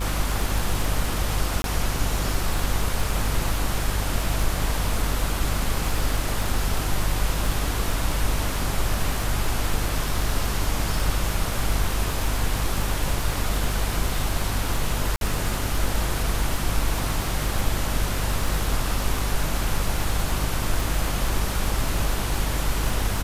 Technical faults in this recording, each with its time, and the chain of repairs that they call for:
buzz 50 Hz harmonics 38 -28 dBFS
crackle 58 per s -27 dBFS
1.62–1.64 s: dropout 22 ms
15.16–15.21 s: dropout 52 ms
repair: de-click; de-hum 50 Hz, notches 38; interpolate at 1.62 s, 22 ms; interpolate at 15.16 s, 52 ms

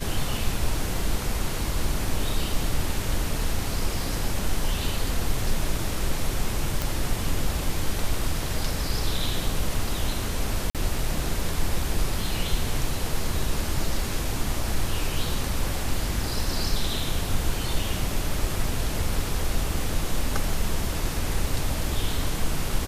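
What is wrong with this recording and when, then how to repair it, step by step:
6.82 s: pop
10.70–10.75 s: dropout 47 ms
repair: de-click; interpolate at 10.70 s, 47 ms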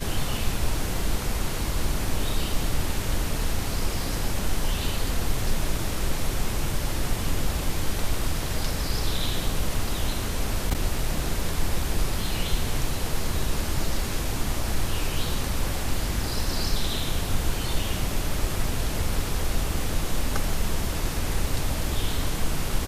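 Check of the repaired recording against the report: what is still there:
nothing left

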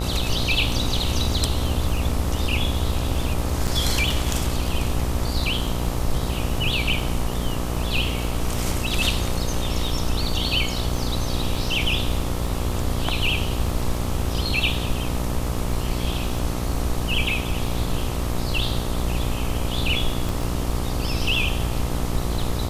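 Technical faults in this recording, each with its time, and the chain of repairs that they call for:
buzz 60 Hz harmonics 22 -27 dBFS
crackle 25 per s -31 dBFS
3.67–3.68 s: dropout 6.5 ms
20.29 s: pop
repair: de-click; de-hum 60 Hz, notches 22; interpolate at 3.67 s, 6.5 ms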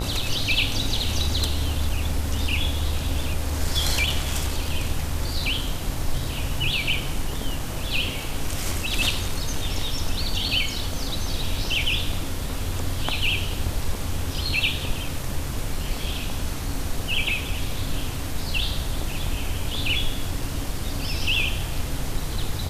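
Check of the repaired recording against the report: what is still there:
20.29 s: pop

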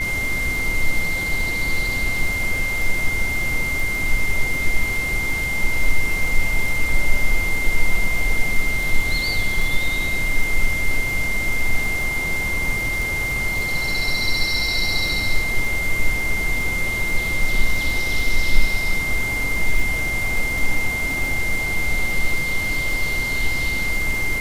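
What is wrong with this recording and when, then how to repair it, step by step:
crackle 25 per s -24 dBFS
whine 2.1 kHz -22 dBFS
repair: de-click; band-stop 2.1 kHz, Q 30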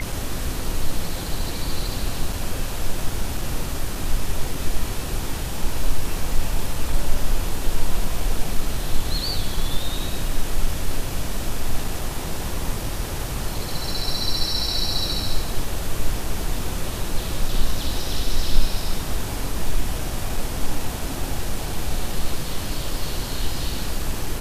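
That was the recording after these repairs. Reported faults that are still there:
nothing left

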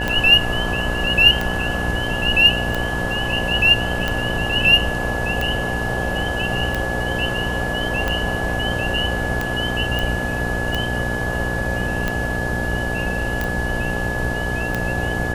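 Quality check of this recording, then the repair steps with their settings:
buzz 60 Hz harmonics 15 -26 dBFS
tick 45 rpm -8 dBFS
whine 1.7 kHz -25 dBFS
9.99 s: pop
13.44 s: pop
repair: de-click; de-hum 60 Hz, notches 15; band-stop 1.7 kHz, Q 30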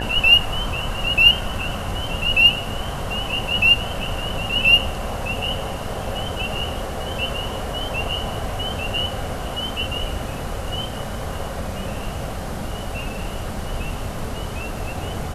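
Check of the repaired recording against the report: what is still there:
nothing left

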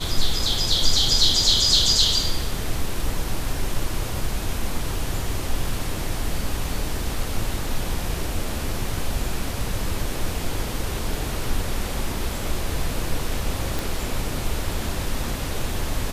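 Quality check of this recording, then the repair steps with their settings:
13.79 s: pop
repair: de-click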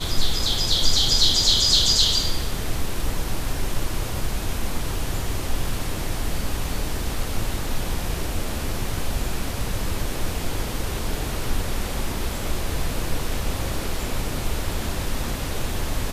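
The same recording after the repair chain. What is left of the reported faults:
nothing left

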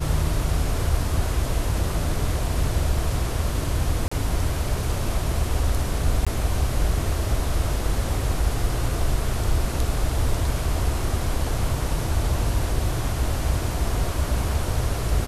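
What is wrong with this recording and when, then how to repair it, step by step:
4.08–4.12 s: dropout 35 ms
6.25–6.27 s: dropout 16 ms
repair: interpolate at 4.08 s, 35 ms; interpolate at 6.25 s, 16 ms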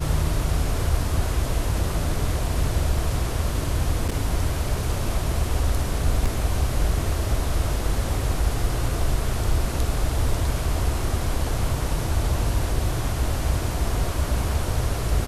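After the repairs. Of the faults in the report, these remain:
nothing left

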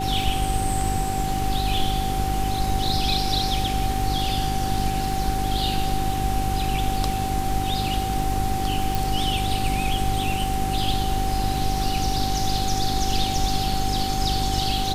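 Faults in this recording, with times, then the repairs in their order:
crackle 42 per s -32 dBFS
hum 50 Hz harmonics 8 -28 dBFS
whine 770 Hz -26 dBFS
8.95 s: pop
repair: de-click; de-hum 50 Hz, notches 8; band-stop 770 Hz, Q 30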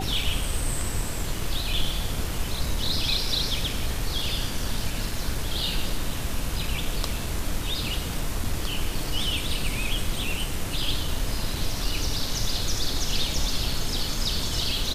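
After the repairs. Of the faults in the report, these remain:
nothing left

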